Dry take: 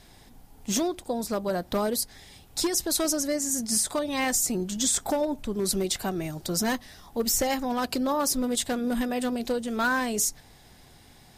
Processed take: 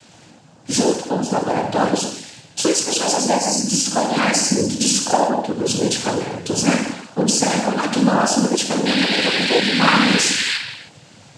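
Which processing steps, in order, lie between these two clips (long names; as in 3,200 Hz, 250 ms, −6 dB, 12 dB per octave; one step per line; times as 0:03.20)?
sound drawn into the spectrogram noise, 0:08.85–0:10.57, 1,600–4,300 Hz −30 dBFS
reverb whose tail is shaped and stops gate 340 ms falling, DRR 1 dB
cochlear-implant simulation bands 8
level +7 dB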